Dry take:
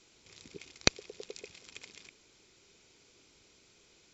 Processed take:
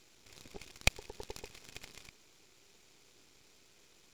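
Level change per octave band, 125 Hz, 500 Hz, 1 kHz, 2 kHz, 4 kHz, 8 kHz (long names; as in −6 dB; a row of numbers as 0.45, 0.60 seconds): +0.5 dB, −6.0 dB, −2.5 dB, −0.5 dB, −5.5 dB, can't be measured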